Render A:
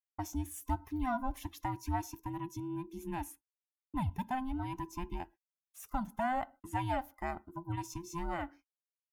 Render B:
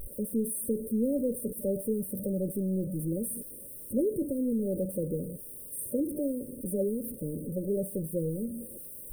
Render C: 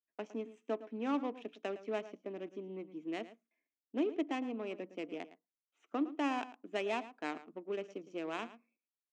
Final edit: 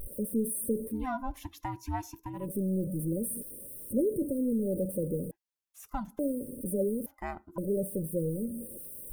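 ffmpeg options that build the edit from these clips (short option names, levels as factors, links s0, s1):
-filter_complex "[0:a]asplit=3[s0][s1][s2];[1:a]asplit=4[s3][s4][s5][s6];[s3]atrim=end=1.07[s7];[s0]atrim=start=0.83:end=2.56[s8];[s4]atrim=start=2.32:end=5.312[s9];[s1]atrim=start=5.308:end=6.192[s10];[s5]atrim=start=6.188:end=7.062[s11];[s2]atrim=start=7.058:end=7.582[s12];[s6]atrim=start=7.578[s13];[s7][s8]acrossfade=d=0.24:c1=tri:c2=tri[s14];[s14][s9]acrossfade=d=0.24:c1=tri:c2=tri[s15];[s15][s10]acrossfade=d=0.004:c1=hsin:c2=hsin[s16];[s16][s11]acrossfade=d=0.004:c1=hsin:c2=hsin[s17];[s17][s12]acrossfade=d=0.004:c1=hsin:c2=hsin[s18];[s18][s13]acrossfade=d=0.004:c1=hsin:c2=hsin"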